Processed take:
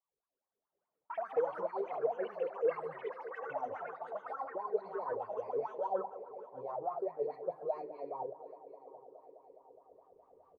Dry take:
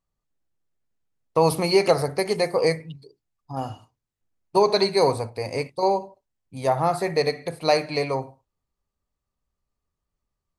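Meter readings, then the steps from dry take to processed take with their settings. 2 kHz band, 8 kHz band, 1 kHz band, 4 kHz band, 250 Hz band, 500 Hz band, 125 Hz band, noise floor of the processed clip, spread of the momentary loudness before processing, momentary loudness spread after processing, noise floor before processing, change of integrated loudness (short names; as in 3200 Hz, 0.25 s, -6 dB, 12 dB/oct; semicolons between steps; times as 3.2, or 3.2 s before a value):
-17.5 dB, under -40 dB, -13.0 dB, under -35 dB, -22.0 dB, -13.5 dB, -31.0 dB, under -85 dBFS, 13 LU, 17 LU, -84 dBFS, -15.5 dB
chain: recorder AGC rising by 12 dB/s; tilt shelf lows +6.5 dB; reverse; compressor 6:1, threshold -27 dBFS, peak gain reduction 18.5 dB; reverse; dispersion highs, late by 48 ms, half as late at 1900 Hz; flange 0.24 Hz, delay 1.7 ms, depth 9.9 ms, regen -31%; wah 4.8 Hz 430–1100 Hz, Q 11; band-limited delay 0.208 s, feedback 84%, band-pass 440 Hz, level -14.5 dB; echoes that change speed 0.208 s, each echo +6 st, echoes 3, each echo -6 dB; feedback echo 0.739 s, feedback 36%, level -19 dB; gain +7 dB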